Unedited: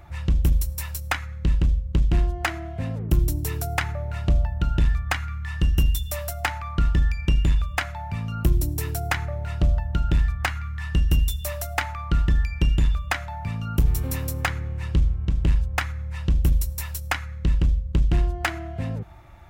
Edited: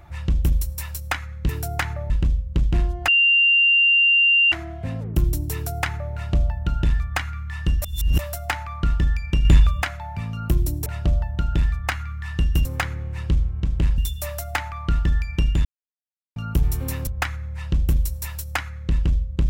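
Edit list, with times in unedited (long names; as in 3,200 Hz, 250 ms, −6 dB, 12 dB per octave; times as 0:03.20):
0:02.47: insert tone 2,780 Hz −13 dBFS 1.44 s
0:05.77–0:06.14: reverse
0:07.40–0:07.77: clip gain +7 dB
0:08.81–0:09.42: move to 0:01.49
0:12.88–0:13.59: silence
0:14.30–0:15.63: move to 0:11.21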